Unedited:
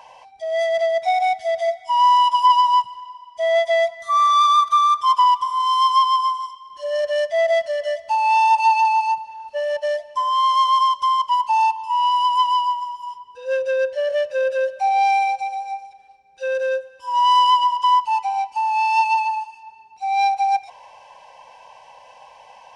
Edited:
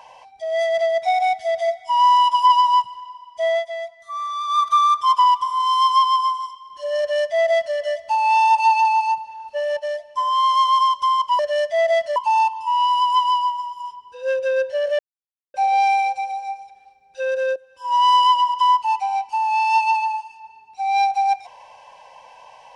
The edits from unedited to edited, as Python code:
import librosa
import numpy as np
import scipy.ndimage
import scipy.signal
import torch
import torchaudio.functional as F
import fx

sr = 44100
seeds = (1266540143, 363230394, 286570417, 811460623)

y = fx.edit(x, sr, fx.fade_down_up(start_s=3.47, length_s=1.19, db=-11.5, fade_s=0.2),
    fx.duplicate(start_s=6.99, length_s=0.77, to_s=11.39),
    fx.clip_gain(start_s=9.79, length_s=0.39, db=-3.5),
    fx.silence(start_s=14.22, length_s=0.55),
    fx.fade_in_from(start_s=16.79, length_s=0.37, floor_db=-13.0), tone=tone)